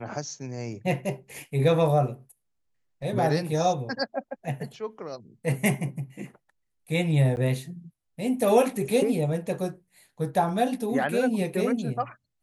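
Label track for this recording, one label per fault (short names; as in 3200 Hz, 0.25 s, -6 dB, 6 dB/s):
7.360000	7.370000	gap 9.9 ms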